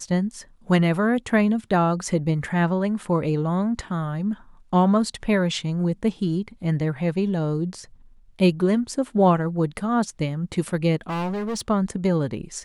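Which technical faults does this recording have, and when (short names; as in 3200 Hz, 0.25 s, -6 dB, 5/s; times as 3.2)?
11.09–11.61 clipped -24 dBFS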